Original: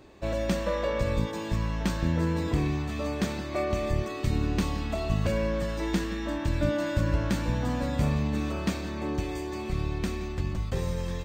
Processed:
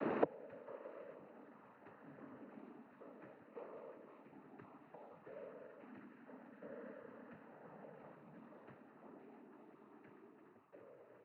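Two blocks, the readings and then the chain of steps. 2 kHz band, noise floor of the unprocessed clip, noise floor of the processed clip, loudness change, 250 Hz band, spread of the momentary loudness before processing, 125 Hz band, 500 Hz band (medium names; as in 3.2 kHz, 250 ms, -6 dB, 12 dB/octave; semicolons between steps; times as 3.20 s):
-22.0 dB, -35 dBFS, -65 dBFS, -23.5 dB, -23.0 dB, 5 LU, -37.0 dB, -17.5 dB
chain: inverted gate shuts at -28 dBFS, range -41 dB; mistuned SSB -56 Hz 290–2000 Hz; noise-vocoded speech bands 12; trim +17 dB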